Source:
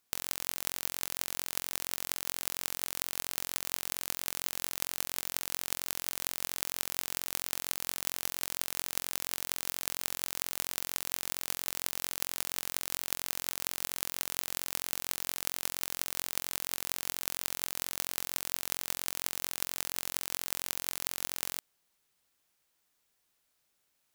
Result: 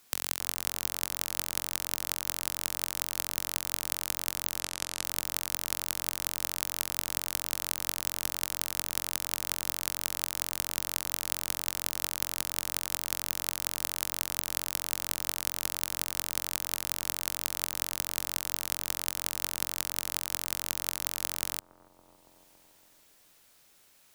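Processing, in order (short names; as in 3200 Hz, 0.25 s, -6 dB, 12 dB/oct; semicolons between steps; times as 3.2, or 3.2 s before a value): 4.6–5.03 LPF 9700 Hz 12 dB/oct; analogue delay 0.28 s, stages 2048, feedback 57%, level -17 dB; three-band squash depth 40%; gain +2.5 dB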